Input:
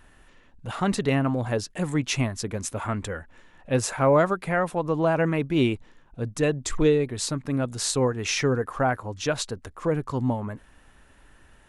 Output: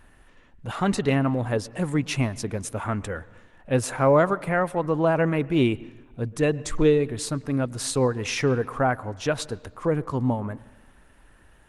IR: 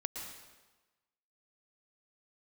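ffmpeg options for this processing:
-filter_complex "[0:a]asplit=2[s0][s1];[1:a]atrim=start_sample=2205,lowpass=3500[s2];[s1][s2]afir=irnorm=-1:irlink=0,volume=0.178[s3];[s0][s3]amix=inputs=2:normalize=0" -ar 48000 -c:a libopus -b:a 32k

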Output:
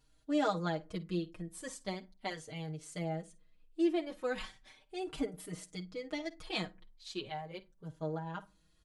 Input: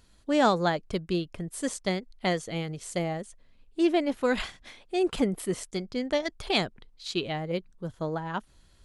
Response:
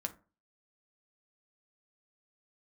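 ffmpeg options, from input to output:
-filter_complex "[0:a]aecho=1:1:6.4:0.59,asplit=2[s0][s1];[1:a]atrim=start_sample=2205,adelay=51[s2];[s1][s2]afir=irnorm=-1:irlink=0,volume=0.15[s3];[s0][s3]amix=inputs=2:normalize=0,asplit=2[s4][s5];[s5]adelay=4.6,afreqshift=0.38[s6];[s4][s6]amix=inputs=2:normalize=1,volume=0.376"

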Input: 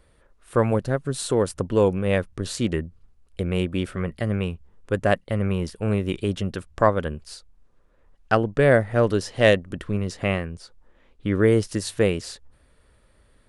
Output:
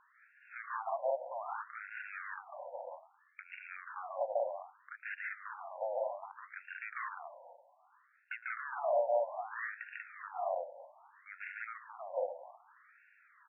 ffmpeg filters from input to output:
-filter_complex "[0:a]equalizer=f=710:t=o:w=0.69:g=12,acompressor=threshold=0.0398:ratio=3,asplit=2[s0][s1];[s1]aecho=0:1:145.8|189.5:1|0.891[s2];[s0][s2]amix=inputs=2:normalize=0,asoftclip=type=tanh:threshold=0.0562,asplit=2[s3][s4];[s4]asplit=6[s5][s6][s7][s8][s9][s10];[s5]adelay=112,afreqshift=-38,volume=0.15[s11];[s6]adelay=224,afreqshift=-76,volume=0.0944[s12];[s7]adelay=336,afreqshift=-114,volume=0.0596[s13];[s8]adelay=448,afreqshift=-152,volume=0.0376[s14];[s9]adelay=560,afreqshift=-190,volume=0.0234[s15];[s10]adelay=672,afreqshift=-228,volume=0.0148[s16];[s11][s12][s13][s14][s15][s16]amix=inputs=6:normalize=0[s17];[s3][s17]amix=inputs=2:normalize=0,afftfilt=real='re*between(b*sr/1024,680*pow(2000/680,0.5+0.5*sin(2*PI*0.63*pts/sr))/1.41,680*pow(2000/680,0.5+0.5*sin(2*PI*0.63*pts/sr))*1.41)':imag='im*between(b*sr/1024,680*pow(2000/680,0.5+0.5*sin(2*PI*0.63*pts/sr))/1.41,680*pow(2000/680,0.5+0.5*sin(2*PI*0.63*pts/sr))*1.41)':win_size=1024:overlap=0.75,volume=1.12"

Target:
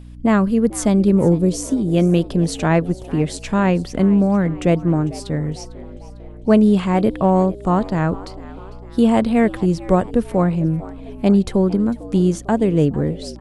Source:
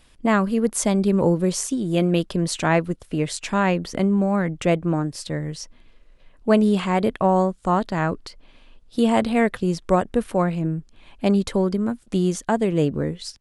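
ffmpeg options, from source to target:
-filter_complex "[0:a]lowshelf=f=500:g=8,aeval=exprs='val(0)+0.0178*(sin(2*PI*60*n/s)+sin(2*PI*2*60*n/s)/2+sin(2*PI*3*60*n/s)/3+sin(2*PI*4*60*n/s)/4+sin(2*PI*5*60*n/s)/5)':c=same,asettb=1/sr,asplit=3[s0][s1][s2];[s0]atrim=end=1.174[s3];[s1]atrim=start=1.17:end=1.88,asetpts=PTS-STARTPTS,afade=t=in:d=0.004:c=qsin,afade=t=out:st=0.706:d=0.004:c=qsin,equalizer=f=1700:t=o:w=1.4:g=-8[s4];[s2]atrim=start=1.876[s5];[s3][s4]acrossfade=d=0.004:c1=hsin:c2=qsin[s6];[s6][s5]acrossfade=d=0.004:c1=qsin:c2=hsin,asplit=2[s7][s8];[s8]asplit=4[s9][s10][s11][s12];[s9]adelay=450,afreqshift=98,volume=0.112[s13];[s10]adelay=900,afreqshift=196,volume=0.055[s14];[s11]adelay=1350,afreqshift=294,volume=0.0269[s15];[s12]adelay=1800,afreqshift=392,volume=0.0132[s16];[s13][s14][s15][s16]amix=inputs=4:normalize=0[s17];[s7][s17]amix=inputs=2:normalize=0,volume=0.841"

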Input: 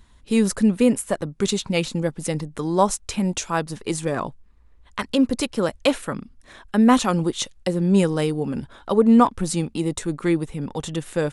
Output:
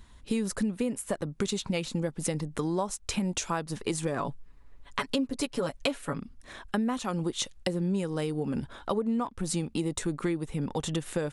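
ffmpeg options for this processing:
-filter_complex "[0:a]asettb=1/sr,asplit=3[s0][s1][s2];[s0]atrim=end=4.194[s3];[s1]atrim=start=4.19:end=6.19,asetpts=PTS-STARTPTS,afade=t=in:d=0.004:c=qsin,afade=t=out:st=1.996:d=0.004:c=qsin,aecho=1:1:7.1:0.78,atrim=end_sample=88200[s4];[s2]atrim=start=6.186[s5];[s3][s4]acrossfade=d=0.004:c1=hsin:c2=qsin[s6];[s6][s5]acrossfade=d=0.004:c1=qsin:c2=hsin,acompressor=threshold=0.0501:ratio=10"

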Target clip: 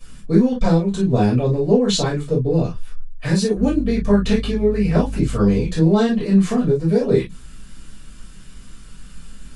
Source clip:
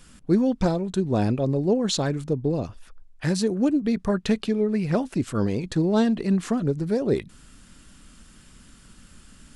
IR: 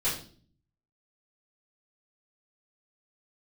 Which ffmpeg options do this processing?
-filter_complex "[0:a]asettb=1/sr,asplit=3[s0][s1][s2];[s0]atrim=end=3.564[s3];[s1]atrim=start=3.56:end=5.68,asetpts=PTS-STARTPTS,afade=t=in:d=0.004:c=qsin,afade=t=out:st=2.116:d=0.004:c=qsin,aeval=exprs='val(0)+0.0158*(sin(2*PI*50*n/s)+sin(2*PI*2*50*n/s)/2+sin(2*PI*3*50*n/s)/3+sin(2*PI*4*50*n/s)/4+sin(2*PI*5*50*n/s)/5)':c=same[s4];[s2]atrim=start=5.676[s5];[s3][s4]acrossfade=d=0.004:c1=hsin:c2=qsin[s6];[s6][s5]acrossfade=d=0.004:c1=qsin:c2=hsin[s7];[1:a]atrim=start_sample=2205,atrim=end_sample=3087[s8];[s7][s8]afir=irnorm=-1:irlink=0,volume=0.75"

